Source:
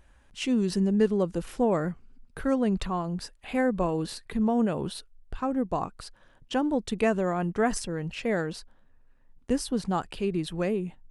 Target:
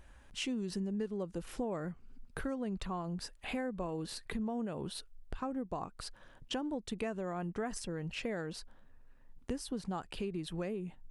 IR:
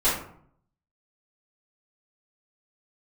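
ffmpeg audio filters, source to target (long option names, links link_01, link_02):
-af "acompressor=threshold=-38dB:ratio=4,volume=1dB"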